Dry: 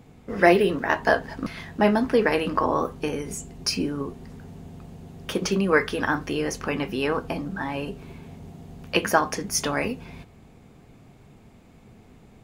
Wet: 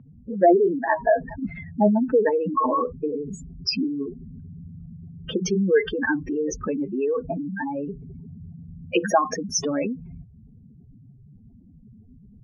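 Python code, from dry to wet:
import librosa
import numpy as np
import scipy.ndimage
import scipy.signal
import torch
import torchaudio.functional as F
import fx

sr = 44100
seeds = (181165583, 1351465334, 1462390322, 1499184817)

y = fx.spec_expand(x, sr, power=3.6)
y = fx.env_lowpass(y, sr, base_hz=1700.0, full_db=-22.0)
y = y * 10.0 ** (2.0 / 20.0)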